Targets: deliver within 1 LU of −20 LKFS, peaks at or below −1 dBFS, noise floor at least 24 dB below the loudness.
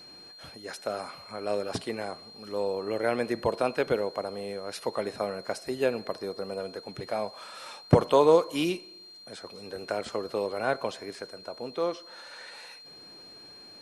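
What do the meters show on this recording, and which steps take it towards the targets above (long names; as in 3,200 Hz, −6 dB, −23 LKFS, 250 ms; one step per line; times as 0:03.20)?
interfering tone 4,200 Hz; level of the tone −47 dBFS; integrated loudness −30.0 LKFS; sample peak −6.5 dBFS; target loudness −20.0 LKFS
→ notch filter 4,200 Hz, Q 30
level +10 dB
brickwall limiter −1 dBFS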